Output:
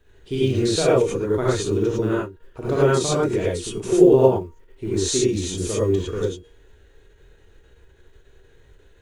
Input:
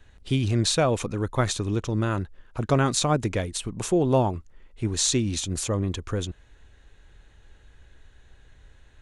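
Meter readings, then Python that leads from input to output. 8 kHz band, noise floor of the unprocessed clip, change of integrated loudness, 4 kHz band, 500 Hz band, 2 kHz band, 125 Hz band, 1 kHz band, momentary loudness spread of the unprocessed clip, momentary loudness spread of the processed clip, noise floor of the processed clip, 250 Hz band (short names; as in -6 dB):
0.0 dB, -55 dBFS, +5.0 dB, -0.5 dB, +9.0 dB, +1.5 dB, 0.0 dB, 0.0 dB, 10 LU, 12 LU, -54 dBFS, +5.0 dB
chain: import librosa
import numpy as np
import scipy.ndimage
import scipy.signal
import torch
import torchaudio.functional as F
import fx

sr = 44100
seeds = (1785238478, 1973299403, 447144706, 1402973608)

y = fx.high_shelf(x, sr, hz=8000.0, db=-3.0)
y = fx.comb_fb(y, sr, f0_hz=470.0, decay_s=0.46, harmonics='all', damping=0.0, mix_pct=60)
y = fx.rev_gated(y, sr, seeds[0], gate_ms=130, shape='rising', drr_db=-7.5)
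y = fx.quant_companded(y, sr, bits=8)
y = fx.peak_eq(y, sr, hz=400.0, db=12.5, octaves=0.58)
y = fx.end_taper(y, sr, db_per_s=150.0)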